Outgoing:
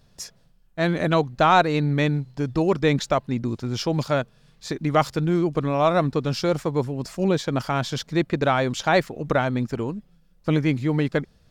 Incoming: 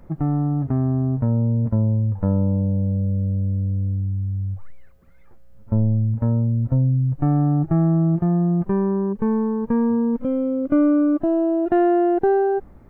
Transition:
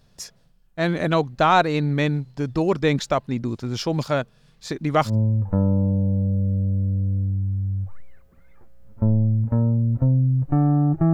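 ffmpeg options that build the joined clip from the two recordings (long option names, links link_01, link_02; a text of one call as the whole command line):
ffmpeg -i cue0.wav -i cue1.wav -filter_complex "[0:a]apad=whole_dur=11.13,atrim=end=11.13,atrim=end=5.16,asetpts=PTS-STARTPTS[link_01];[1:a]atrim=start=1.74:end=7.83,asetpts=PTS-STARTPTS[link_02];[link_01][link_02]acrossfade=duration=0.12:curve1=tri:curve2=tri" out.wav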